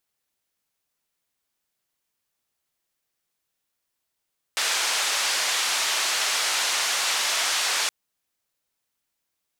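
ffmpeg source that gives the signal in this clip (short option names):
-f lavfi -i "anoisesrc=c=white:d=3.32:r=44100:seed=1,highpass=f=750,lowpass=f=6400,volume=-14dB"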